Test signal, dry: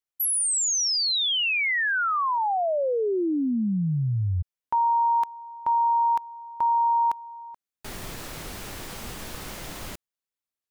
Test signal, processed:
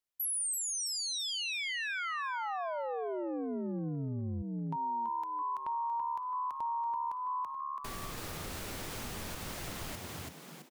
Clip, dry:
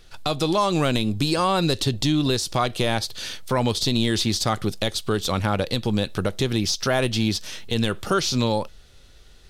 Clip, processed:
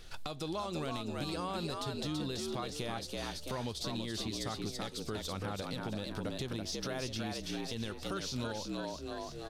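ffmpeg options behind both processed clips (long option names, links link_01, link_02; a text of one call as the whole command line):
ffmpeg -i in.wav -filter_complex "[0:a]asplit=6[link_01][link_02][link_03][link_04][link_05][link_06];[link_02]adelay=332,afreqshift=72,volume=-4dB[link_07];[link_03]adelay=664,afreqshift=144,volume=-12.9dB[link_08];[link_04]adelay=996,afreqshift=216,volume=-21.7dB[link_09];[link_05]adelay=1328,afreqshift=288,volume=-30.6dB[link_10];[link_06]adelay=1660,afreqshift=360,volume=-39.5dB[link_11];[link_01][link_07][link_08][link_09][link_10][link_11]amix=inputs=6:normalize=0,acompressor=threshold=-32dB:ratio=5:attack=0.61:release=380:knee=6:detection=rms,volume=-1dB" out.wav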